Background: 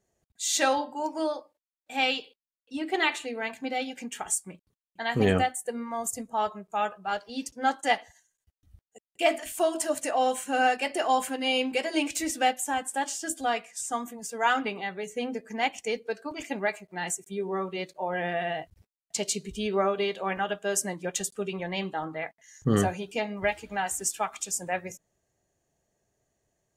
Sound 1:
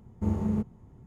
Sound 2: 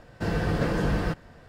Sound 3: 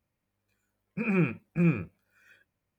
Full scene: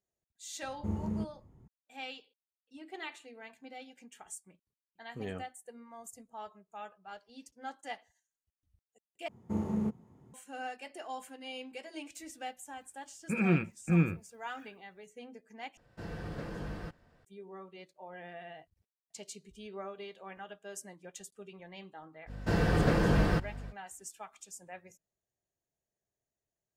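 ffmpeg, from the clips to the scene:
-filter_complex "[1:a]asplit=2[s0][s1];[2:a]asplit=2[s2][s3];[0:a]volume=0.141[s4];[s1]highpass=150[s5];[s3]aeval=exprs='val(0)+0.01*(sin(2*PI*50*n/s)+sin(2*PI*2*50*n/s)/2+sin(2*PI*3*50*n/s)/3+sin(2*PI*4*50*n/s)/4+sin(2*PI*5*50*n/s)/5)':c=same[s6];[s4]asplit=3[s7][s8][s9];[s7]atrim=end=9.284[s10];[s5]atrim=end=1.06,asetpts=PTS-STARTPTS,volume=0.75[s11];[s8]atrim=start=10.336:end=15.774[s12];[s2]atrim=end=1.48,asetpts=PTS-STARTPTS,volume=0.178[s13];[s9]atrim=start=17.246[s14];[s0]atrim=end=1.06,asetpts=PTS-STARTPTS,volume=0.447,afade=t=in:d=0.004:c=hsin,afade=t=out:st=1.056:d=0.004:c=hsin,adelay=620[s15];[3:a]atrim=end=2.78,asetpts=PTS-STARTPTS,volume=0.841,afade=t=in:d=0.004:c=hsin,afade=t=out:st=2.776:d=0.004:c=hsin,adelay=12320[s16];[s6]atrim=end=1.48,asetpts=PTS-STARTPTS,volume=0.891,afade=t=in:d=0.05,afade=t=out:st=1.43:d=0.05,adelay=22260[s17];[s10][s11]acrossfade=d=0.004:c1=hsin:c2=hsin[s18];[s18][s12]acrossfade=d=0.004:c1=hsin:c2=hsin[s19];[s19][s13]acrossfade=d=0.004:c1=hsin:c2=hsin[s20];[s20][s14]acrossfade=d=0.004:c1=hsin:c2=hsin[s21];[s21][s15][s16][s17]amix=inputs=4:normalize=0"

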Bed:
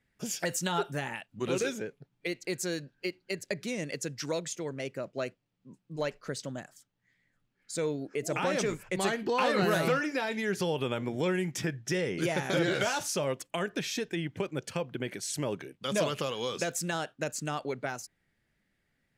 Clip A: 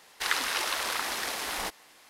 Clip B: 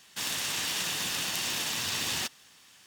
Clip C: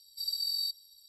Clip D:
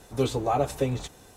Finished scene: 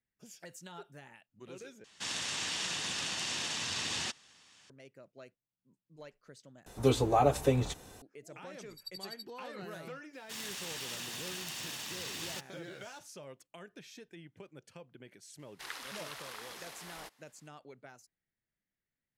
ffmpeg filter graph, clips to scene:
-filter_complex "[2:a]asplit=2[s0][s1];[0:a]volume=0.126[s2];[s0]lowpass=f=8400:w=0.5412,lowpass=f=8400:w=1.3066[s3];[3:a]aeval=exprs='val(0)*pow(10,-35*(0.5-0.5*cos(2*PI*12*n/s))/20)':c=same[s4];[s2]asplit=3[s5][s6][s7];[s5]atrim=end=1.844[s8];[s3]atrim=end=2.86,asetpts=PTS-STARTPTS,volume=0.631[s9];[s6]atrim=start=4.696:end=6.664[s10];[4:a]atrim=end=1.36,asetpts=PTS-STARTPTS,volume=0.891[s11];[s7]atrim=start=8.016[s12];[s4]atrim=end=1.08,asetpts=PTS-STARTPTS,volume=0.376,afade=t=in:d=0.004:c=hsin,afade=t=out:st=1.076:d=0.004:c=hsin,adelay=8540[s13];[s1]atrim=end=2.86,asetpts=PTS-STARTPTS,volume=0.316,afade=t=in:d=0.004:c=hsin,afade=t=out:st=2.856:d=0.004:c=hsin,adelay=10130[s14];[1:a]atrim=end=2.09,asetpts=PTS-STARTPTS,volume=0.168,afade=t=in:d=0.004:c=hsin,afade=t=out:st=2.086:d=0.004:c=hsin,adelay=15390[s15];[s8][s9]acrossfade=d=0.004:c1=hsin:c2=hsin[s16];[s16][s10]acrossfade=d=0.004:c1=hsin:c2=hsin[s17];[s17][s11]acrossfade=d=0.004:c1=hsin:c2=hsin[s18];[s18][s12]acrossfade=d=0.004:c1=hsin:c2=hsin[s19];[s19][s13][s14][s15]amix=inputs=4:normalize=0"

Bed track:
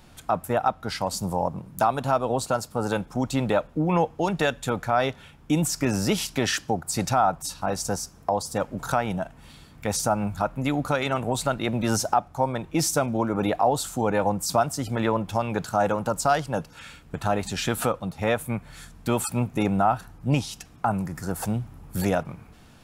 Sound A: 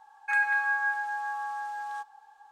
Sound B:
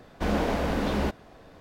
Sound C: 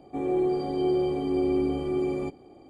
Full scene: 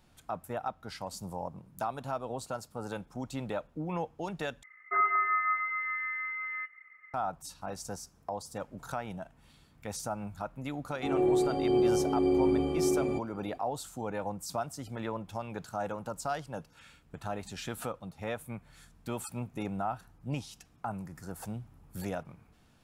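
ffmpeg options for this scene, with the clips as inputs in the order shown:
-filter_complex "[0:a]volume=0.237[s0];[1:a]lowpass=f=2500:t=q:w=0.5098,lowpass=f=2500:t=q:w=0.6013,lowpass=f=2500:t=q:w=0.9,lowpass=f=2500:t=q:w=2.563,afreqshift=-2900[s1];[s0]asplit=2[s2][s3];[s2]atrim=end=4.634[s4];[s1]atrim=end=2.51,asetpts=PTS-STARTPTS,volume=0.891[s5];[s3]atrim=start=7.136[s6];[3:a]atrim=end=2.69,asetpts=PTS-STARTPTS,volume=0.891,afade=t=in:d=0.004:c=hsin,afade=t=out:st=2.686:d=0.004:c=hsin,adelay=10890[s7];[s4][s5]acrossfade=d=0.004:c1=hsin:c2=hsin[s8];[s8][s6]acrossfade=d=0.004:c1=hsin:c2=hsin[s9];[s9][s7]amix=inputs=2:normalize=0"

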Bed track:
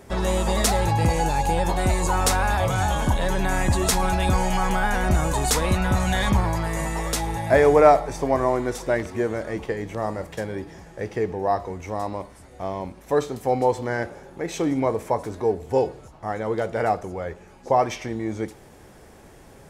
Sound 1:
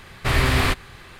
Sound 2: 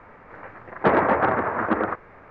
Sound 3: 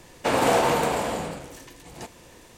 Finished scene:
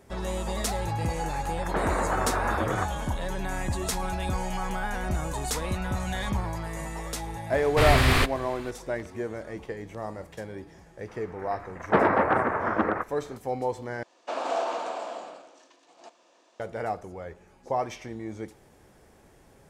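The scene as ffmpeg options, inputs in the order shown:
-filter_complex "[2:a]asplit=2[s0][s1];[0:a]volume=0.376[s2];[s0]acompressor=threshold=0.0708:ratio=6:attack=3.2:release=140:knee=1:detection=peak[s3];[3:a]highpass=f=300:w=0.5412,highpass=f=300:w=1.3066,equalizer=f=440:t=q:w=4:g=-6,equalizer=f=660:t=q:w=4:g=8,equalizer=f=1200:t=q:w=4:g=5,equalizer=f=2000:t=q:w=4:g=-6,lowpass=f=6800:w=0.5412,lowpass=f=6800:w=1.3066[s4];[s2]asplit=2[s5][s6];[s5]atrim=end=14.034[s7];[s4]atrim=end=2.57,asetpts=PTS-STARTPTS,volume=0.282[s8];[s6]atrim=start=16.596[s9];[s3]atrim=end=2.3,asetpts=PTS-STARTPTS,volume=0.891,afade=t=in:d=0.004:c=hsin,afade=t=out:st=2.296:d=0.004:c=hsin,adelay=900[s10];[1:a]atrim=end=1.19,asetpts=PTS-STARTPTS,volume=0.841,afade=t=in:d=0.004:c=hsin,afade=t=out:st=1.186:d=0.004:c=hsin,adelay=7520[s11];[s1]atrim=end=2.3,asetpts=PTS-STARTPTS,volume=0.75,afade=t=in:d=0.004:c=hsin,afade=t=out:st=2.296:d=0.004:c=hsin,adelay=11080[s12];[s7][s8]acrossfade=d=0.004:c1=hsin:c2=hsin[s13];[s13][s9]acrossfade=d=0.004:c1=hsin:c2=hsin[s14];[s14][s10][s11][s12]amix=inputs=4:normalize=0"

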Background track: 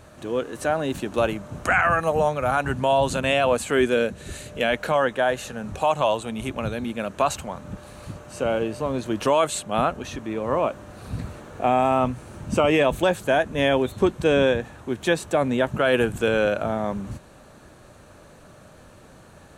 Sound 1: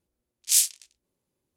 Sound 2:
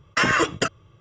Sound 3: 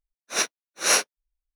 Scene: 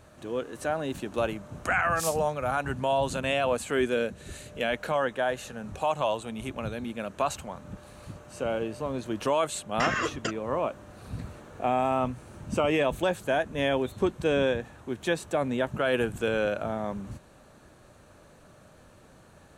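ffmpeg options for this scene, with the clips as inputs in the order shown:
-filter_complex "[0:a]volume=0.501[s0];[1:a]asplit=2[s1][s2];[s2]adelay=20,volume=0.447[s3];[s1][s3]amix=inputs=2:normalize=0,atrim=end=1.56,asetpts=PTS-STARTPTS,volume=0.178,afade=t=in:d=0.004:c=hsin,afade=t=out:st=1.556:d=0.004:c=hsin,adelay=1480[s4];[2:a]atrim=end=1,asetpts=PTS-STARTPTS,volume=0.355,afade=t=in:d=0.004:c=hsin,afade=t=out:st=0.996:d=0.004:c=hsin,adelay=9630[s5];[s0][s4][s5]amix=inputs=3:normalize=0"

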